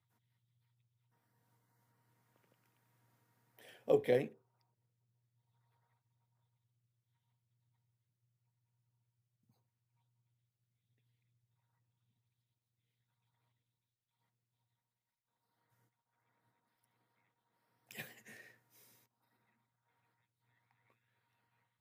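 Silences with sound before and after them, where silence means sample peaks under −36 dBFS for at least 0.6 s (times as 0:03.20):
0:04.24–0:17.91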